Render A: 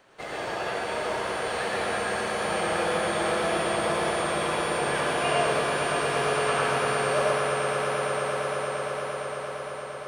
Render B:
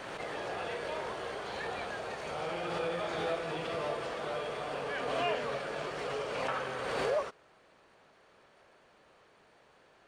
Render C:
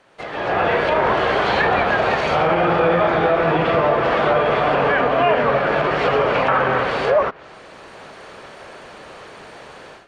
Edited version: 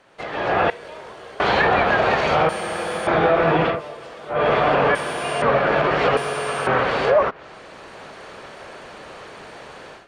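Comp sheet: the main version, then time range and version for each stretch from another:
C
0.70–1.40 s: from B
2.49–3.07 s: from A
3.73–4.36 s: from B, crossfade 0.16 s
4.95–5.42 s: from A
6.17–6.67 s: from A

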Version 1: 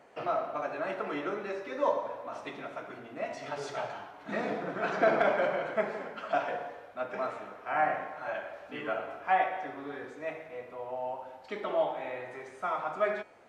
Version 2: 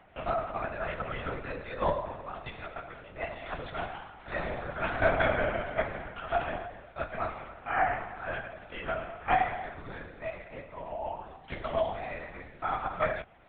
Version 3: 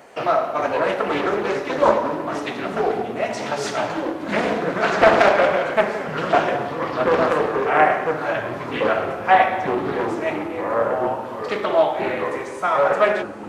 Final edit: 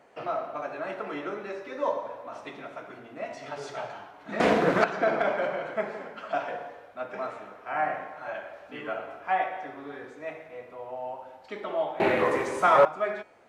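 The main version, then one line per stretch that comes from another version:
1
4.40–4.84 s: from 3
12.00–12.85 s: from 3
not used: 2

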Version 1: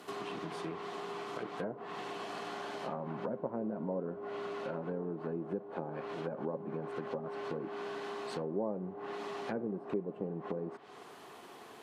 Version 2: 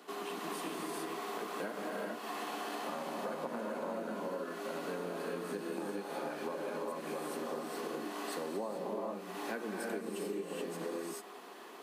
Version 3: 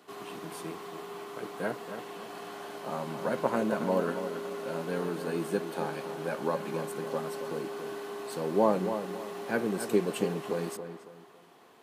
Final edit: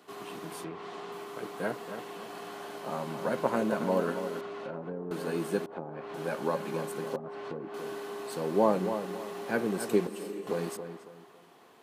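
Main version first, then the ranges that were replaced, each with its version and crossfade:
3
0.64–1.12 s: from 1
4.41–5.11 s: from 1
5.66–6.14 s: from 1
7.16–7.74 s: from 1
10.07–10.47 s: from 2

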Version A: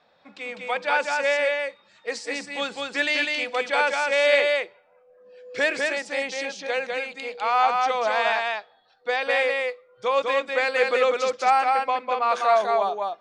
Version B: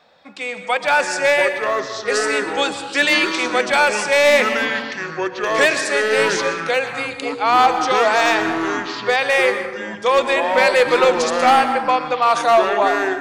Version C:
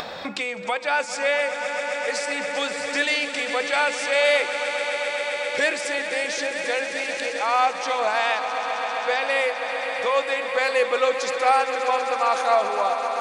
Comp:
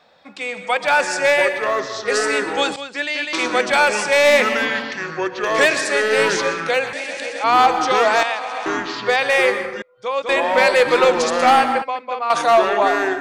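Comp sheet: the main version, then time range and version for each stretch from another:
B
2.76–3.33 s: from A
6.93–7.44 s: from C
8.23–8.66 s: from C
9.82–10.29 s: from A
11.82–12.30 s: from A

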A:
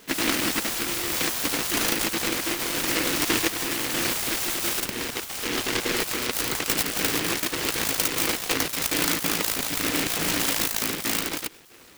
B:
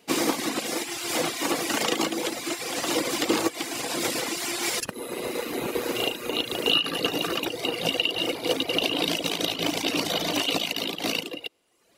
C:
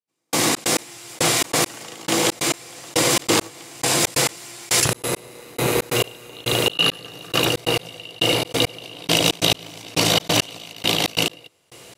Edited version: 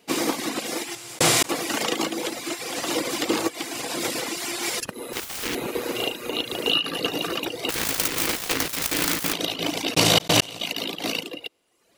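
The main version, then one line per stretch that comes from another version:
B
0.95–1.49 s: from C
5.13–5.55 s: from A
7.69–9.33 s: from A
9.94–10.61 s: from C

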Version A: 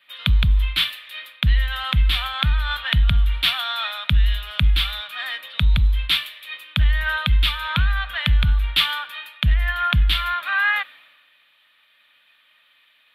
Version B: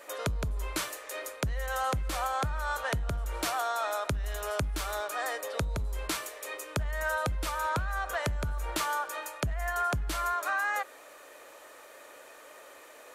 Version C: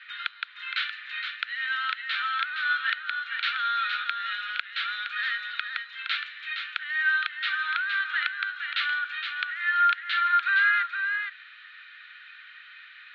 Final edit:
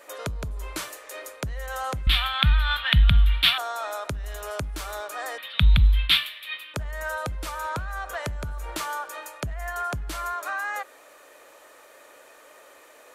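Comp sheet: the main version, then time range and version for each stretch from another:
B
2.07–3.58 s: from A
5.38–6.74 s: from A
not used: C

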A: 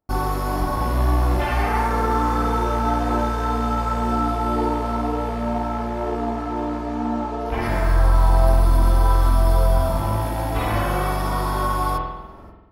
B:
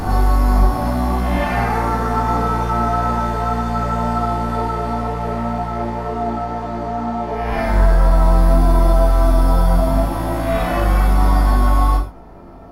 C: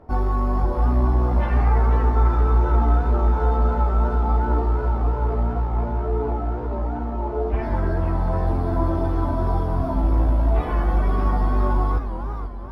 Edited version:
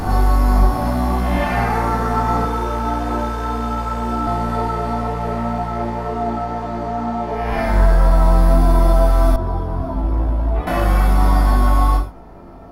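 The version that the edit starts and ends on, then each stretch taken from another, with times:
B
2.45–4.27 s: from A
9.36–10.67 s: from C

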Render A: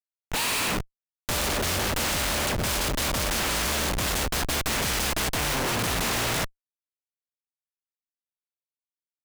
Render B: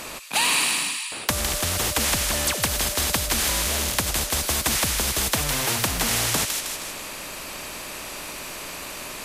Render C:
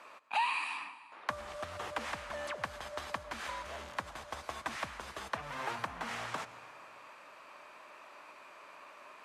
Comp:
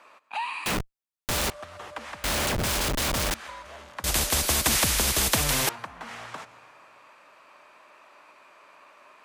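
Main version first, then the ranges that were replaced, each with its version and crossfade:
C
0.66–1.50 s: from A
2.24–3.34 s: from A
4.04–5.69 s: from B

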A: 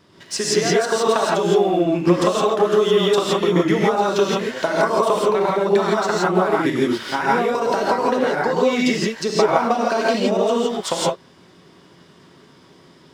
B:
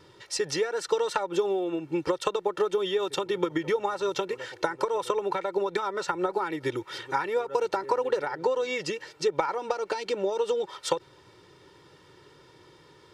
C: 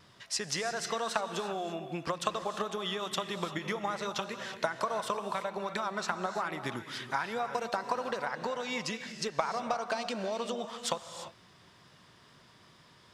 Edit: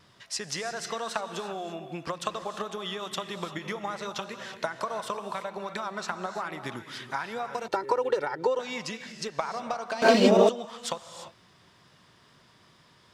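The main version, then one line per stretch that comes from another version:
C
7.68–8.59 s: from B
10.02–10.49 s: from A

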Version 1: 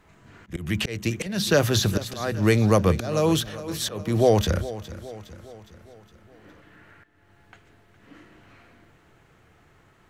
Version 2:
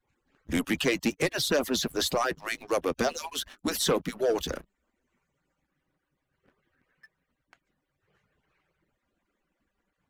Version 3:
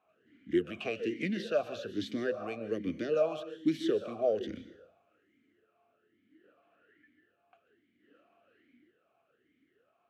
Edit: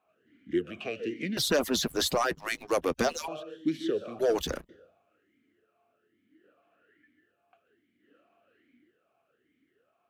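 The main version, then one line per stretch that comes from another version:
3
1.37–3.28 s: from 2
4.19–4.69 s: from 2
not used: 1

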